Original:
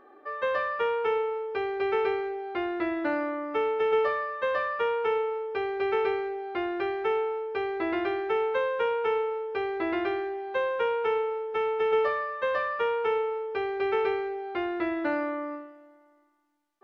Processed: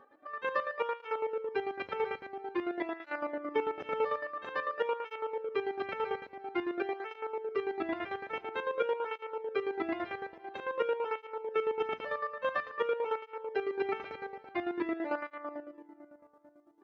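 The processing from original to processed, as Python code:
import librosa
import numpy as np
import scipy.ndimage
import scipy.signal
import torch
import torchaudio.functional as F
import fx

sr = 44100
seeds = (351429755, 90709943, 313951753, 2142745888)

y = fx.echo_filtered(x, sr, ms=463, feedback_pct=60, hz=1600.0, wet_db=-21)
y = fx.chopper(y, sr, hz=9.0, depth_pct=65, duty_pct=40)
y = fx.flanger_cancel(y, sr, hz=0.49, depth_ms=3.0)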